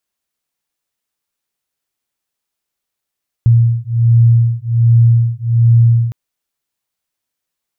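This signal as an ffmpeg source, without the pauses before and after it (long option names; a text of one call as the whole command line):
ffmpeg -f lavfi -i "aevalsrc='0.299*(sin(2*PI*116*t)+sin(2*PI*117.3*t))':duration=2.66:sample_rate=44100" out.wav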